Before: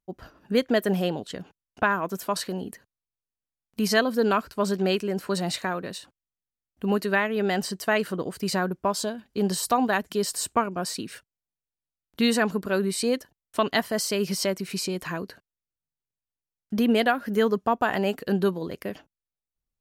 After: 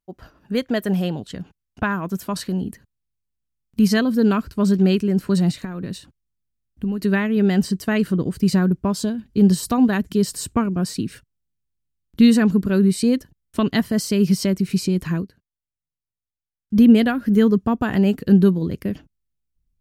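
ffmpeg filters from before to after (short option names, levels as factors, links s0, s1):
-filter_complex "[0:a]asettb=1/sr,asplit=3[s0][s1][s2];[s0]atrim=end=5.504[s3];[s1]atrim=start=5.5:end=7.02,asetpts=PTS-STARTPTS,afade=t=in:d=0.004:c=qsin,afade=t=out:st=1.516:d=0.004:c=qsin,acompressor=threshold=0.0282:ratio=5:attack=3.2:release=140:knee=1:detection=peak[s4];[s2]atrim=start=7.016[s5];[s3][s4]acrossfade=d=0.004:c1=hsin:c2=qsin[s6];[s6][s5]acrossfade=d=0.004:c1=qsin:c2=hsin,asplit=3[s7][s8][s9];[s7]atrim=end=15.59,asetpts=PTS-STARTPTS,afade=t=out:st=15.2:d=0.39:c=exp:silence=0.188365[s10];[s8]atrim=start=15.59:end=16.38,asetpts=PTS-STARTPTS,volume=0.188[s11];[s9]atrim=start=16.38,asetpts=PTS-STARTPTS,afade=t=in:d=0.39:c=exp:silence=0.188365[s12];[s10][s11][s12]concat=n=3:v=0:a=1,asubboost=boost=7.5:cutoff=240"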